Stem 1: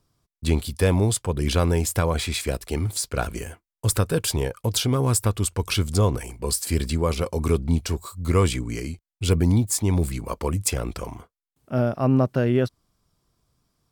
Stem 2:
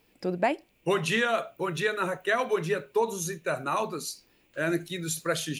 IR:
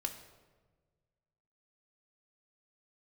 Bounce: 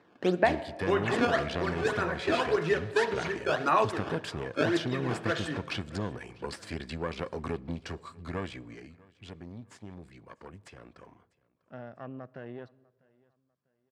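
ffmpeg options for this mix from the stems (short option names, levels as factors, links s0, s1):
-filter_complex "[0:a]acompressor=threshold=0.0708:ratio=3,aeval=exprs='(tanh(8.91*val(0)+0.8)-tanh(0.8))/8.91':c=same,volume=0.75,afade=t=out:st=8.2:d=0.74:silence=0.281838,asplit=4[s0][s1][s2][s3];[s1]volume=0.211[s4];[s2]volume=0.0668[s5];[1:a]acrusher=samples=13:mix=1:aa=0.000001:lfo=1:lforange=20.8:lforate=1.8,volume=1,asplit=3[s6][s7][s8];[s7]volume=0.596[s9];[s8]volume=0.0841[s10];[s3]apad=whole_len=246704[s11];[s6][s11]sidechaincompress=threshold=0.00562:ratio=8:attack=36:release=130[s12];[2:a]atrim=start_sample=2205[s13];[s4][s9]amix=inputs=2:normalize=0[s14];[s14][s13]afir=irnorm=-1:irlink=0[s15];[s5][s10]amix=inputs=2:normalize=0,aecho=0:1:647|1294|1941|2588:1|0.31|0.0961|0.0298[s16];[s0][s12][s15][s16]amix=inputs=4:normalize=0,highpass=140,lowpass=3500,equalizer=f=1700:w=5.6:g=7"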